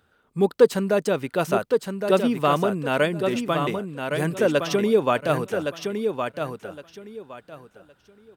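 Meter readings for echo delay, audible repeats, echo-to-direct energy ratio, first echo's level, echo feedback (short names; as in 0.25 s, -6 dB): 1.114 s, 3, -6.0 dB, -6.0 dB, 22%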